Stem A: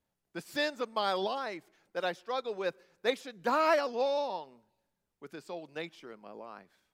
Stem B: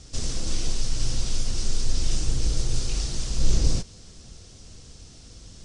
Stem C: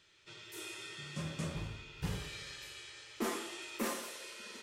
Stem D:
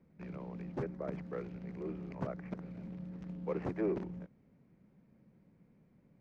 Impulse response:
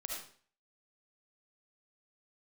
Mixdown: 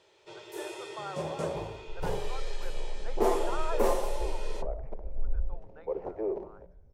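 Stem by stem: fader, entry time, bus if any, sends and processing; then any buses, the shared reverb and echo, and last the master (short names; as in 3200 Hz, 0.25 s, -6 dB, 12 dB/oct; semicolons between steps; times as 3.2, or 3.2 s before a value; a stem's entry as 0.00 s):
-7.0 dB, 0.00 s, no send, band-pass 1400 Hz, Q 6
-10.5 dB, 1.75 s, send -8 dB, spectral contrast raised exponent 3.6
-0.5 dB, 0.00 s, no send, one-sided clip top -31.5 dBFS
-13.5 dB, 2.40 s, send -8 dB, notches 60/120/180 Hz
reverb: on, RT60 0.45 s, pre-delay 30 ms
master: band shelf 600 Hz +16 dB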